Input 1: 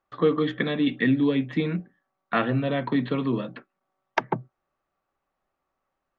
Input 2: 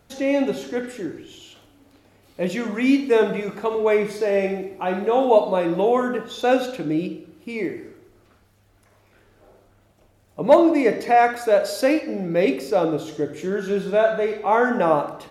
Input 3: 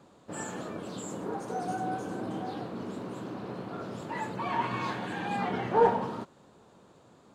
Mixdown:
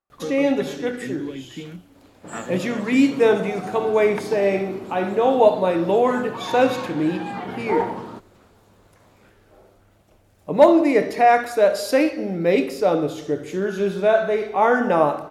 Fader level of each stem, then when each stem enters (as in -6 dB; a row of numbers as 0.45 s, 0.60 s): -10.0 dB, +1.0 dB, +0.5 dB; 0.00 s, 0.10 s, 1.95 s